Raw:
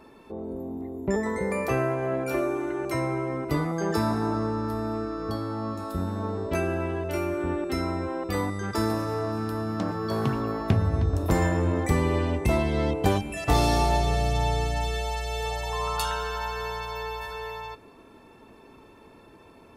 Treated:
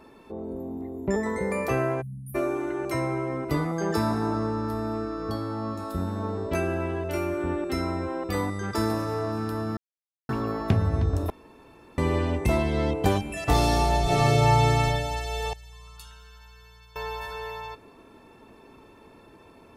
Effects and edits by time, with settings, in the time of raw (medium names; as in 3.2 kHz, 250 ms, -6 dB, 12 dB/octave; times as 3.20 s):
2.01–2.35 s: spectral selection erased 240–9200 Hz
9.77–10.29 s: mute
11.30–11.98 s: room tone
14.03–14.84 s: reverb throw, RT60 0.98 s, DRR -7 dB
15.53–16.96 s: amplifier tone stack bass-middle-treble 6-0-2